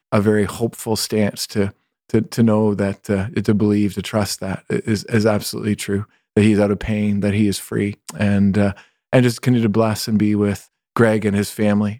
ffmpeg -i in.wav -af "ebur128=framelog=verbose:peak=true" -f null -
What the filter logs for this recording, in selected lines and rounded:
Integrated loudness:
  I:         -18.9 LUFS
  Threshold: -29.0 LUFS
Loudness range:
  LRA:         2.0 LU
  Threshold: -39.0 LUFS
  LRA low:   -20.0 LUFS
  LRA high:  -18.0 LUFS
True peak:
  Peak:       -1.5 dBFS